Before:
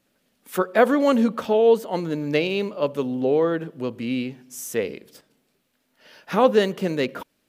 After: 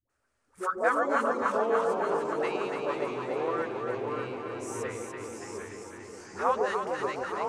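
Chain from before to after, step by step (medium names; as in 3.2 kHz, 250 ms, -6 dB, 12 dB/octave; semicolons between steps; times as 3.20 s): phase dispersion highs, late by 95 ms, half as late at 530 Hz; vibrato 0.57 Hz 10 cents; FFT filter 110 Hz 0 dB, 170 Hz -23 dB, 370 Hz -9 dB, 560 Hz -8 dB, 1.3 kHz +4 dB, 3.5 kHz -14 dB, 5.3 kHz -6 dB, 9 kHz -2 dB, 13 kHz -24 dB; echo whose repeats swap between lows and highs 144 ms, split 850 Hz, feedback 85%, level -3 dB; ever faster or slower copies 158 ms, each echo -2 st, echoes 3, each echo -6 dB; trim -4.5 dB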